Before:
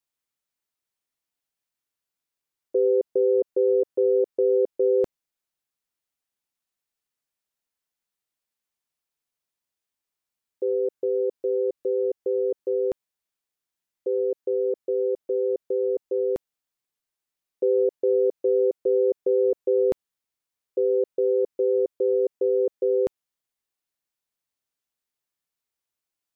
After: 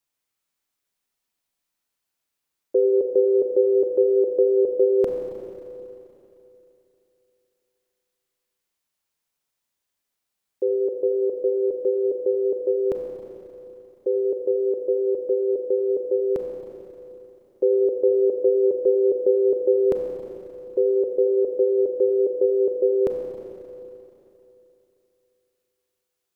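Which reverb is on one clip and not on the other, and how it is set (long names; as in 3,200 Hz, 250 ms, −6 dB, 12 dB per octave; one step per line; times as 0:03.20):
four-comb reverb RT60 3.1 s, combs from 30 ms, DRR 2 dB
level +3.5 dB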